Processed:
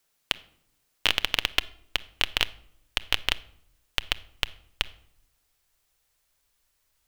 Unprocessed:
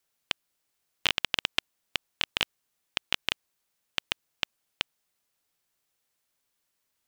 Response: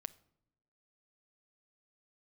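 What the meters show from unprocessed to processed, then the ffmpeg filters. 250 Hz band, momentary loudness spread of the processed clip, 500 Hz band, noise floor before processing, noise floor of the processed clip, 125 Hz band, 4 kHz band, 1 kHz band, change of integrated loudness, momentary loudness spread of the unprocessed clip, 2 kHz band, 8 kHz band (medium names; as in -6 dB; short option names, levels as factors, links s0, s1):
+1.5 dB, 8 LU, +3.0 dB, -79 dBFS, -73 dBFS, +7.0 dB, +3.5 dB, +3.0 dB, +3.5 dB, 8 LU, +3.5 dB, +3.5 dB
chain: -filter_complex "[0:a]asplit=2[s0][s1];[s1]aeval=exprs='(mod(8.91*val(0)+1,2)-1)/8.91':c=same,volume=0.335[s2];[s0][s2]amix=inputs=2:normalize=0,asubboost=boost=11.5:cutoff=57[s3];[1:a]atrim=start_sample=2205[s4];[s3][s4]afir=irnorm=-1:irlink=0,volume=2.24"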